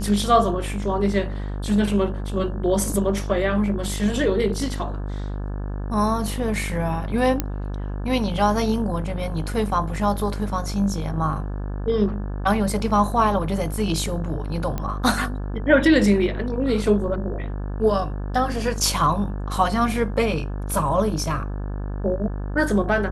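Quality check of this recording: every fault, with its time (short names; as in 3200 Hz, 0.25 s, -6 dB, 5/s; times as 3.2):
buzz 50 Hz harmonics 35 -28 dBFS
7.4 pop -7 dBFS
14.78 pop -14 dBFS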